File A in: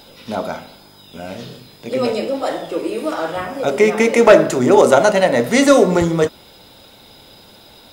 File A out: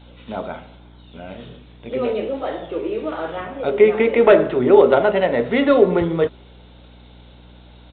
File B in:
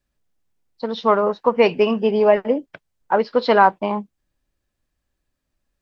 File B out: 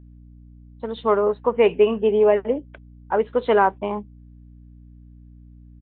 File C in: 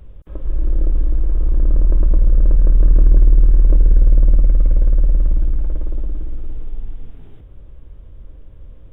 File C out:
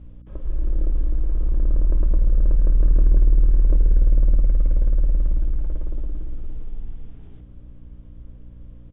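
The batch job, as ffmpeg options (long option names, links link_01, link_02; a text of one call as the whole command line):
ffmpeg -i in.wav -af "adynamicequalizer=threshold=0.0282:dfrequency=410:dqfactor=4.2:tfrequency=410:tqfactor=4.2:attack=5:release=100:ratio=0.375:range=3.5:mode=boostabove:tftype=bell,aeval=exprs='val(0)+0.0112*(sin(2*PI*60*n/s)+sin(2*PI*2*60*n/s)/2+sin(2*PI*3*60*n/s)/3+sin(2*PI*4*60*n/s)/4+sin(2*PI*5*60*n/s)/5)':channel_layout=same,aresample=8000,aresample=44100,volume=-5dB" out.wav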